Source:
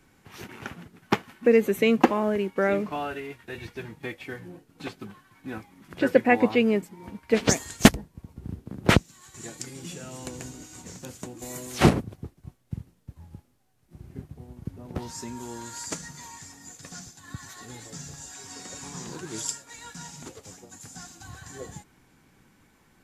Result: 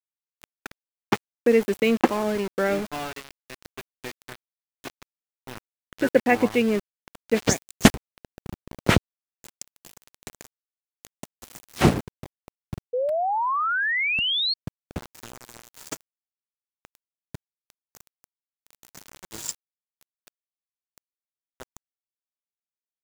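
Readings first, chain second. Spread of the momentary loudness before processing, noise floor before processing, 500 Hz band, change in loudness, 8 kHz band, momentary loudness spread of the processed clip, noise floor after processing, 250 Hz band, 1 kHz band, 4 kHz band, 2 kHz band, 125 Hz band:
22 LU, -62 dBFS, +0.5 dB, +2.5 dB, -1.5 dB, 22 LU, under -85 dBFS, -0.5 dB, +3.0 dB, +5.5 dB, +3.0 dB, -0.5 dB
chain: small samples zeroed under -30 dBFS; painted sound rise, 12.93–14.54 s, 480–4400 Hz -24 dBFS

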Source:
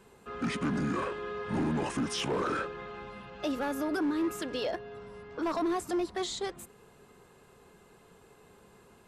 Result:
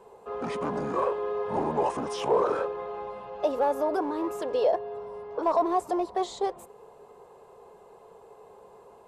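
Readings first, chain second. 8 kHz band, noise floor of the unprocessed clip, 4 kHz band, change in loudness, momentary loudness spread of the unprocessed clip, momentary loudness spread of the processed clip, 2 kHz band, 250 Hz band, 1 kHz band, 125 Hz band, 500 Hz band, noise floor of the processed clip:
-5.0 dB, -59 dBFS, -5.0 dB, +4.0 dB, 14 LU, 11 LU, -4.5 dB, -2.5 dB, +8.5 dB, -5.0 dB, +8.5 dB, -53 dBFS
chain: high-order bell 660 Hz +15.5 dB; trim -5 dB

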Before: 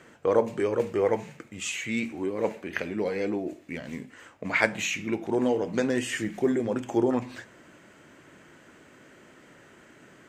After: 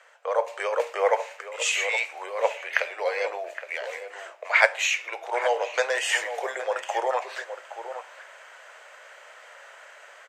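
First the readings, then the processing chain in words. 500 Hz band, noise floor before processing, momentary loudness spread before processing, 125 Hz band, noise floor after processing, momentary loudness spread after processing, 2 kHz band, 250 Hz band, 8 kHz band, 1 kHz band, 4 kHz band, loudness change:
0.0 dB, -55 dBFS, 13 LU, under -40 dB, -49 dBFS, 15 LU, +7.0 dB, under -20 dB, +5.0 dB, +7.5 dB, +7.0 dB, +1.5 dB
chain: steep high-pass 540 Hz 48 dB/octave; treble shelf 9 kHz -8 dB; level rider gain up to 8.5 dB; echo from a far wall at 140 m, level -10 dB

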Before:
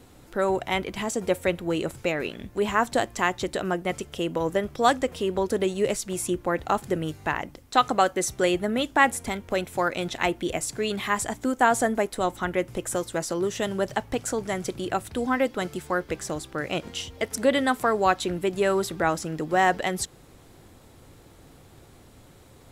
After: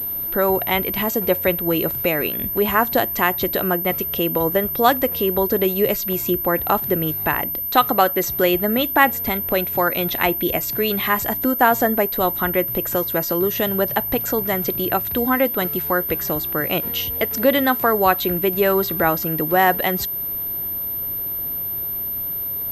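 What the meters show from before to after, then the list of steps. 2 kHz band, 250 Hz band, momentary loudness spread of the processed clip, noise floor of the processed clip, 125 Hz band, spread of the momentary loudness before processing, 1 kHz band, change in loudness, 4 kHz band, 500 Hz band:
+5.0 dB, +5.5 dB, 6 LU, -26 dBFS, +6.0 dB, 8 LU, +5.0 dB, +7.0 dB, +5.0 dB, +5.5 dB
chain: in parallel at -0.5 dB: compression, threshold -34 dBFS, peak gain reduction 19.5 dB; on the sum: class-D stage that switches slowly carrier 13 kHz; trim +3.5 dB

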